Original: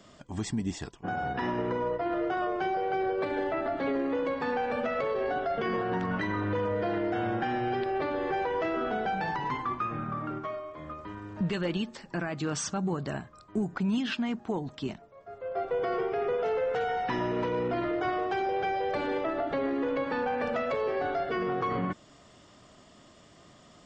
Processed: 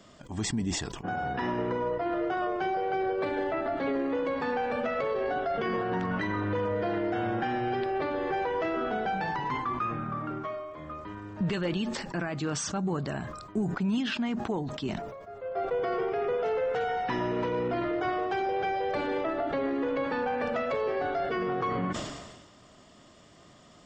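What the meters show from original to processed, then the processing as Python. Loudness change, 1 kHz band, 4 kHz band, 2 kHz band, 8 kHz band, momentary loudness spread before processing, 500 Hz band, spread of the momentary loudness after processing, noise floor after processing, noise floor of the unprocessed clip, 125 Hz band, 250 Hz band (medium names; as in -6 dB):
+0.5 dB, +0.5 dB, +2.0 dB, +0.5 dB, +3.0 dB, 7 LU, +0.5 dB, 5 LU, -55 dBFS, -56 dBFS, +1.0 dB, +0.5 dB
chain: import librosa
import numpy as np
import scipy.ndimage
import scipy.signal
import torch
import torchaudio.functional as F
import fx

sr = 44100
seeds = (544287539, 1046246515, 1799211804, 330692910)

y = fx.sustainer(x, sr, db_per_s=43.0)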